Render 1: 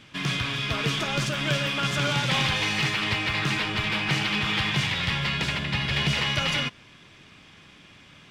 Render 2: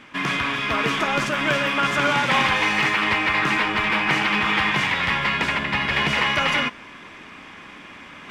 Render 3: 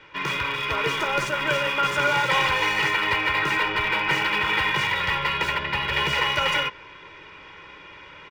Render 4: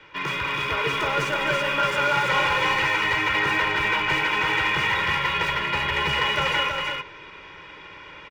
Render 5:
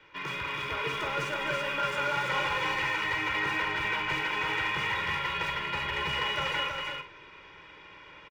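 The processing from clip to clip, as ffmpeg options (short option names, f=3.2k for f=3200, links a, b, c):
-af "equalizer=f=125:t=o:w=1:g=-8,equalizer=f=250:t=o:w=1:g=7,equalizer=f=500:t=o:w=1:g=3,equalizer=f=1k:t=o:w=1:g=9,equalizer=f=2k:t=o:w=1:g=7,equalizer=f=4k:t=o:w=1:g=-4,areverse,acompressor=mode=upward:threshold=-34dB:ratio=2.5,areverse"
-filter_complex "[0:a]aecho=1:1:2.1:0.98,acrossover=split=250|480|6000[a][b][c][d];[d]acrusher=bits=6:mix=0:aa=0.000001[e];[a][b][c][e]amix=inputs=4:normalize=0,volume=-5dB"
-filter_complex "[0:a]acrossover=split=180|3400[a][b][c];[c]alimiter=level_in=8dB:limit=-24dB:level=0:latency=1,volume=-8dB[d];[a][b][d]amix=inputs=3:normalize=0,asoftclip=type=tanh:threshold=-14.5dB,aecho=1:1:207|325:0.282|0.631"
-filter_complex "[0:a]asplit=2[a][b];[b]adelay=45,volume=-10.5dB[c];[a][c]amix=inputs=2:normalize=0,volume=-8dB"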